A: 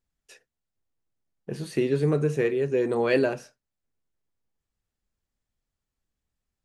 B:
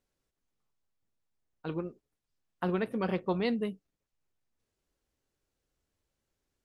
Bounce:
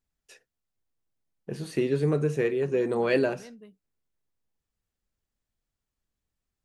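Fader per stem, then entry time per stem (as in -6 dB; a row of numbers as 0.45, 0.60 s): -1.5, -17.0 dB; 0.00, 0.00 s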